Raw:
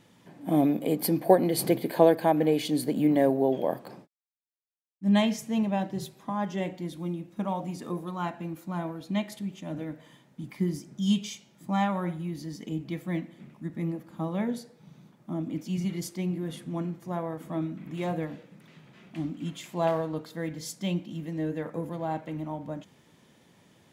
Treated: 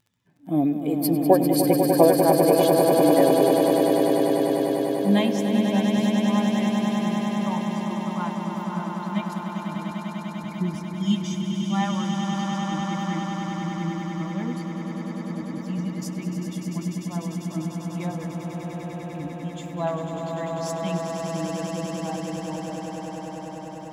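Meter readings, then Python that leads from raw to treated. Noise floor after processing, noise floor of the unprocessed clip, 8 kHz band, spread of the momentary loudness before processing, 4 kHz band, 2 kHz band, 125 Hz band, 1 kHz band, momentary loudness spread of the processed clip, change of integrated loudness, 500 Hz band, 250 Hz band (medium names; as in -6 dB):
-36 dBFS, -61 dBFS, +6.5 dB, 14 LU, +6.0 dB, +5.5 dB, +5.0 dB, +6.0 dB, 15 LU, +5.5 dB, +6.5 dB, +6.0 dB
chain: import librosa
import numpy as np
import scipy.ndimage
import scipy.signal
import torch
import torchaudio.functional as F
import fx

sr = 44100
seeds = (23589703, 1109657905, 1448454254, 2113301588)

y = fx.bin_expand(x, sr, power=1.5)
y = fx.dmg_crackle(y, sr, seeds[0], per_s=13.0, level_db=-51.0)
y = fx.echo_swell(y, sr, ms=99, loudest=8, wet_db=-7.0)
y = y * librosa.db_to_amplitude(3.0)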